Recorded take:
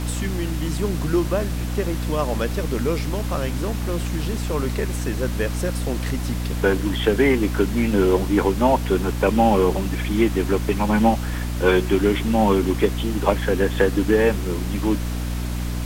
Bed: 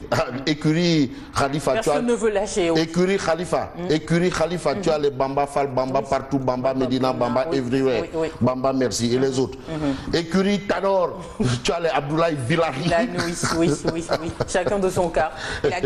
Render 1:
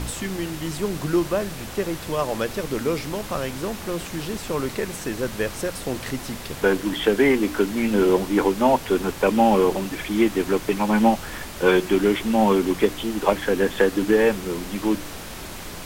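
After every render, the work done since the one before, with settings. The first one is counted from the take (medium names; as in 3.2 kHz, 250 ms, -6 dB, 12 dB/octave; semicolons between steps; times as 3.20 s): de-hum 60 Hz, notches 5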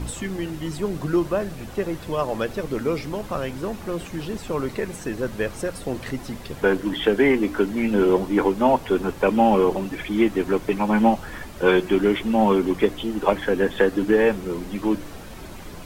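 noise reduction 9 dB, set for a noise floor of -36 dBFS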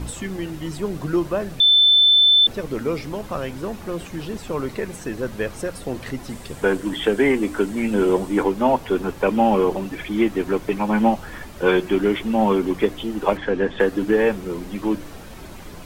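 1.60–2.47 s: bleep 3.53 kHz -10.5 dBFS; 6.29–8.43 s: peaking EQ 8.3 kHz +9 dB 0.51 oct; 13.37–13.80 s: distance through air 100 m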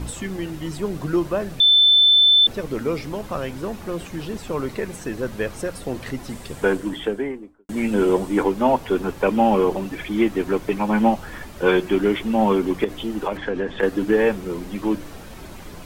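6.63–7.69 s: studio fade out; 12.84–13.83 s: compression, threshold -19 dBFS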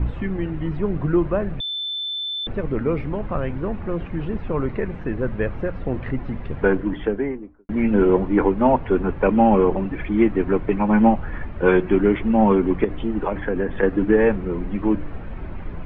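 low-pass 2.4 kHz 24 dB/octave; bass shelf 140 Hz +11.5 dB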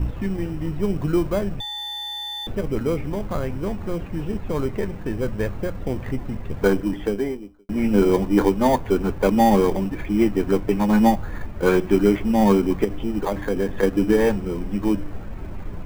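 in parallel at -9 dB: sample-rate reducer 2.7 kHz, jitter 0%; on the sum: feedback comb 100 Hz, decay 0.15 s, harmonics all, mix 50%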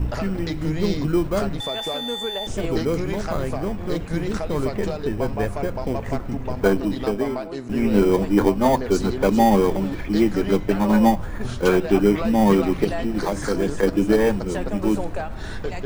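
add bed -9.5 dB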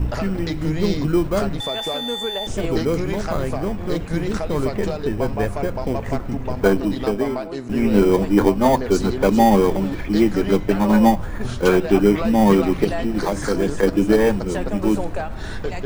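trim +2 dB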